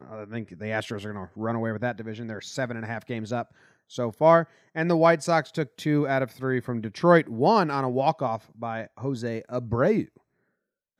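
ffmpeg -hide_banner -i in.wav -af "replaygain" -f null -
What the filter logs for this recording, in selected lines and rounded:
track_gain = +4.0 dB
track_peak = 0.379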